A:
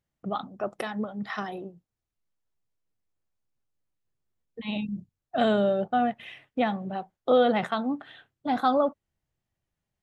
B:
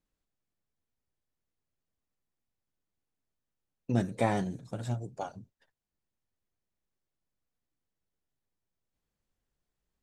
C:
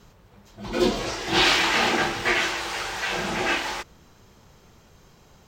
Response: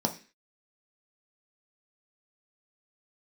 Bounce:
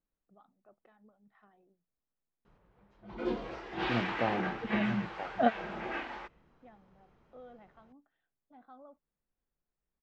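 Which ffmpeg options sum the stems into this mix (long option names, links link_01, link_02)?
-filter_complex "[0:a]adelay=50,volume=0dB[link_01];[1:a]volume=-4dB,asplit=2[link_02][link_03];[2:a]adelay=2450,volume=-11.5dB[link_04];[link_03]apad=whole_len=444146[link_05];[link_01][link_05]sidechaingate=range=-31dB:threshold=-56dB:ratio=16:detection=peak[link_06];[link_06][link_02][link_04]amix=inputs=3:normalize=0,lowpass=2000,equalizer=frequency=94:width=2.5:gain=-9"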